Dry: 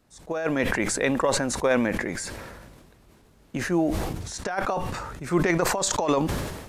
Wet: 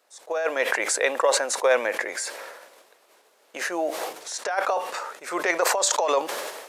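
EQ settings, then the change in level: Chebyshev high-pass 500 Hz, order 3; +3.5 dB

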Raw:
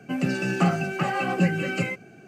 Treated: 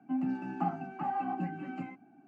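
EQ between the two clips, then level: two resonant band-passes 480 Hz, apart 1.6 oct; 0.0 dB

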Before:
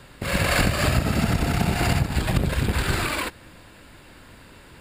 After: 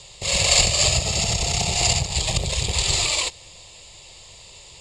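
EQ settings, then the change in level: resonant low-pass 7 kHz, resonance Q 4.6; peaking EQ 3.9 kHz +11 dB 2.3 oct; static phaser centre 630 Hz, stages 4; -1.0 dB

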